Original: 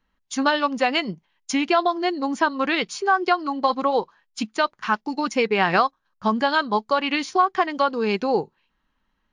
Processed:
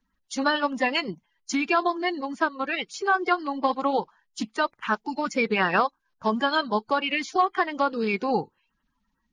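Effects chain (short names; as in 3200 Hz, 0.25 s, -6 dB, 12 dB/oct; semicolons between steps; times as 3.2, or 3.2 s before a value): bin magnitudes rounded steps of 30 dB; 2.21–2.94 upward expander 1.5:1, over -30 dBFS; gain -2.5 dB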